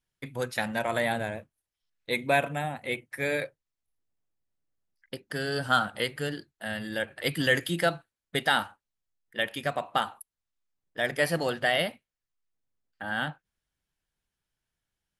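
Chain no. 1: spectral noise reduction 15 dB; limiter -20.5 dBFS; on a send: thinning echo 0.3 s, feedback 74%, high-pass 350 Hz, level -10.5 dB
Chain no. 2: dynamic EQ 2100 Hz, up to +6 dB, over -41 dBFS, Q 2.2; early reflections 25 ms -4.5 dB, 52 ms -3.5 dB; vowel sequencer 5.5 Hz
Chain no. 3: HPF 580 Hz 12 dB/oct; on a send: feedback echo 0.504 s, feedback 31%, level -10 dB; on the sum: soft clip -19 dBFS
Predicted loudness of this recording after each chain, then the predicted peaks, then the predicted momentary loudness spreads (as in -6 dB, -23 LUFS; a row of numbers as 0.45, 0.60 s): -34.0, -37.0, -33.0 LUFS; -18.0, -17.5, -19.0 dBFS; 17, 14, 16 LU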